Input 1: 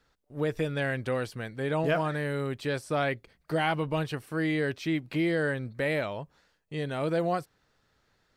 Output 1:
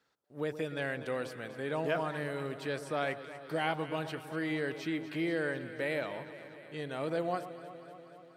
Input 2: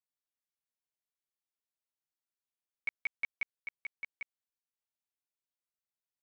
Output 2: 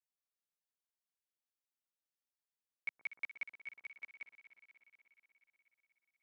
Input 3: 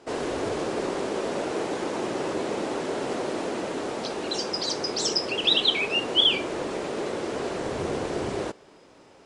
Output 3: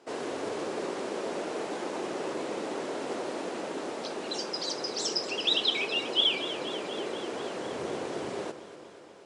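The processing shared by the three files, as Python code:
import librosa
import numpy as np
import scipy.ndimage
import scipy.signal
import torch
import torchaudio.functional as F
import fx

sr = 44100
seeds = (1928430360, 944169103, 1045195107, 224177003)

y = scipy.signal.sosfilt(scipy.signal.bessel(2, 200.0, 'highpass', norm='mag', fs=sr, output='sos'), x)
y = fx.echo_alternate(y, sr, ms=121, hz=1200.0, feedback_pct=83, wet_db=-11.5)
y = y * librosa.db_to_amplitude(-5.0)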